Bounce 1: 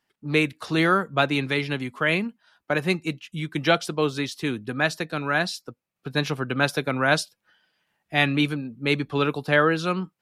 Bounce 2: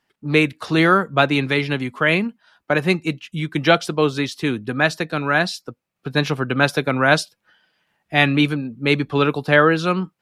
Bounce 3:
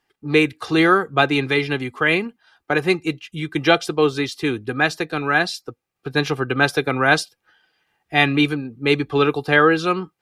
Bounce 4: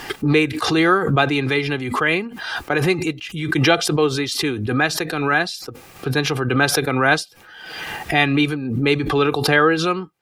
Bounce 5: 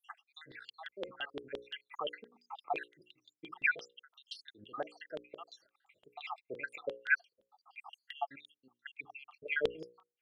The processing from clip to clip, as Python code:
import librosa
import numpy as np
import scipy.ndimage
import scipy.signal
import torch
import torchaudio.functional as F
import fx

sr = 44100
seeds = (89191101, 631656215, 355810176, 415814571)

y1 = fx.high_shelf(x, sr, hz=5500.0, db=-5.0)
y1 = y1 * librosa.db_to_amplitude(5.5)
y2 = y1 + 0.5 * np.pad(y1, (int(2.5 * sr / 1000.0), 0))[:len(y1)]
y2 = y2 * librosa.db_to_amplitude(-1.0)
y3 = fx.pre_swell(y2, sr, db_per_s=42.0)
y3 = y3 * librosa.db_to_amplitude(-1.0)
y4 = fx.spec_dropout(y3, sr, seeds[0], share_pct=80)
y4 = fx.filter_lfo_bandpass(y4, sr, shape='saw_down', hz=5.8, low_hz=460.0, high_hz=3400.0, q=5.8)
y4 = fx.hum_notches(y4, sr, base_hz=60, count=9)
y4 = y4 * librosa.db_to_amplitude(-3.5)